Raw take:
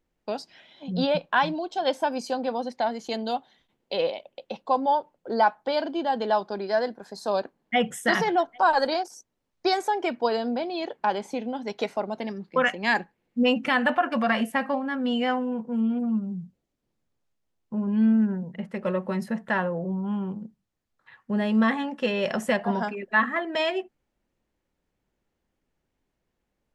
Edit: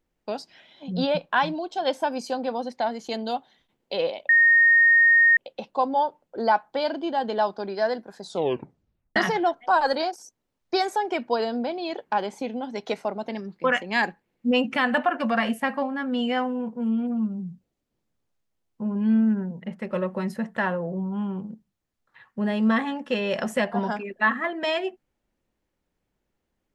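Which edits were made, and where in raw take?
0:04.29: insert tone 1,850 Hz −13 dBFS 1.08 s
0:07.12: tape stop 0.96 s

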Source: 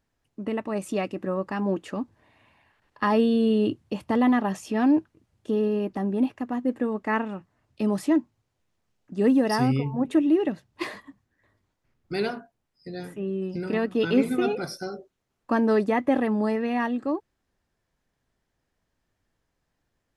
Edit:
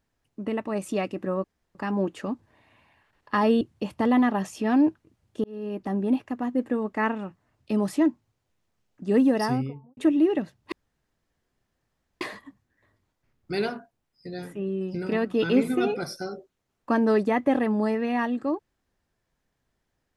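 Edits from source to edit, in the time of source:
0:01.44: splice in room tone 0.31 s
0:03.30–0:03.71: remove
0:05.54–0:06.02: fade in
0:09.39–0:10.07: fade out and dull
0:10.82: splice in room tone 1.49 s

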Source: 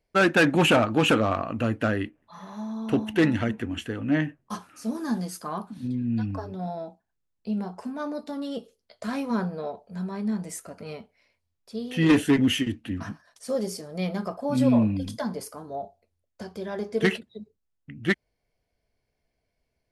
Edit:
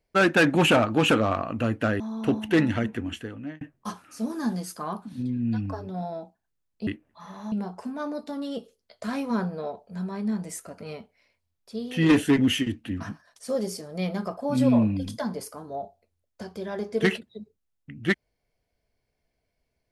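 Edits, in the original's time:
0:02.00–0:02.65: move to 0:07.52
0:03.69–0:04.26: fade out

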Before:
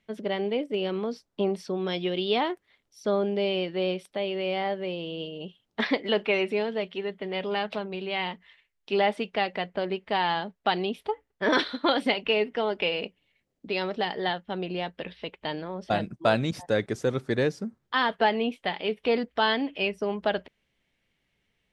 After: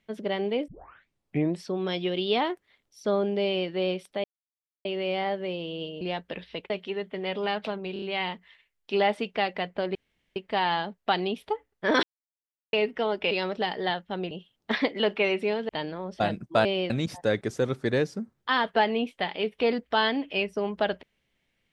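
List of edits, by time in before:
0:00.68: tape start 0.95 s
0:03.44–0:03.69: duplicate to 0:16.35
0:04.24: splice in silence 0.61 s
0:05.40–0:06.78: swap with 0:14.70–0:15.39
0:08.01: stutter 0.03 s, 4 plays
0:09.94: splice in room tone 0.41 s
0:11.61–0:12.31: silence
0:12.89–0:13.70: remove

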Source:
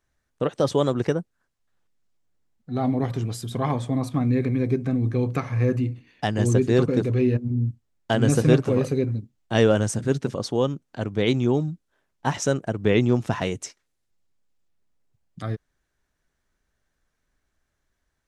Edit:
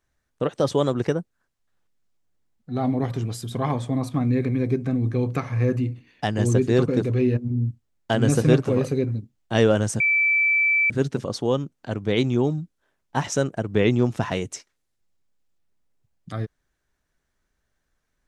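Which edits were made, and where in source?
0:10.00: insert tone 2,320 Hz −16.5 dBFS 0.90 s

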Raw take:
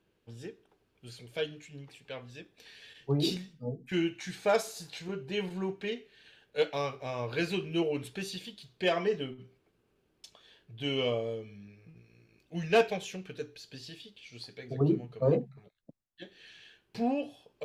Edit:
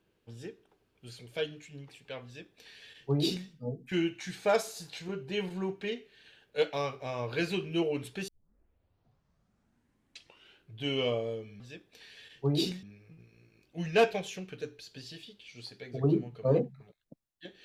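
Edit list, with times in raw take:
0:02.25–0:03.48: duplicate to 0:11.60
0:08.28: tape start 2.53 s

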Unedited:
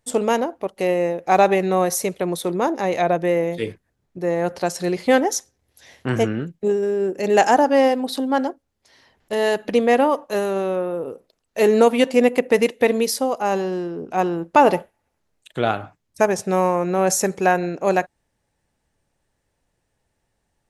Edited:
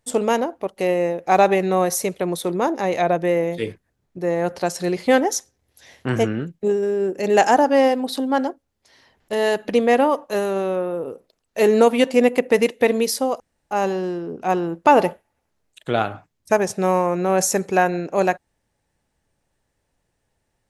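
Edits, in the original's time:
0:13.40: splice in room tone 0.31 s

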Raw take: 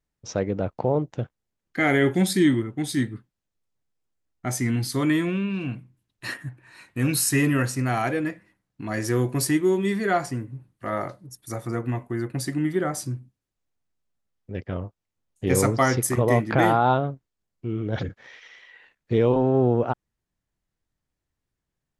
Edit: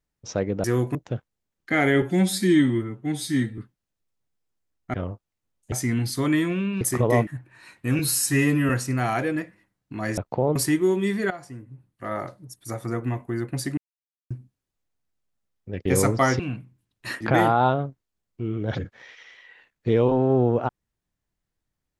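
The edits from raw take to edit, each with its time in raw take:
0:00.64–0:01.02: swap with 0:09.06–0:09.37
0:02.09–0:03.13: time-stretch 1.5×
0:05.58–0:06.39: swap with 0:15.99–0:16.45
0:07.11–0:07.58: time-stretch 1.5×
0:10.12–0:11.23: fade in, from −16.5 dB
0:12.59–0:13.12: silence
0:14.67–0:15.45: move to 0:04.49

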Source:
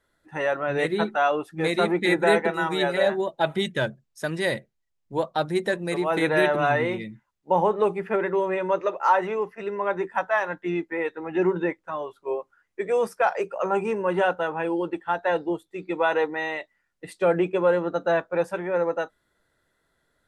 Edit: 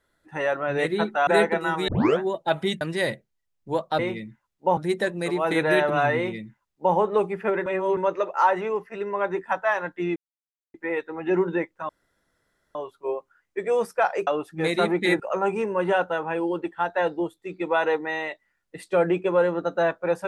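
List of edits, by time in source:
0:01.27–0:02.20: move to 0:13.49
0:02.81: tape start 0.32 s
0:03.74–0:04.25: remove
0:06.83–0:07.61: duplicate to 0:05.43
0:08.32–0:08.63: reverse
0:10.82: splice in silence 0.58 s
0:11.97: splice in room tone 0.86 s

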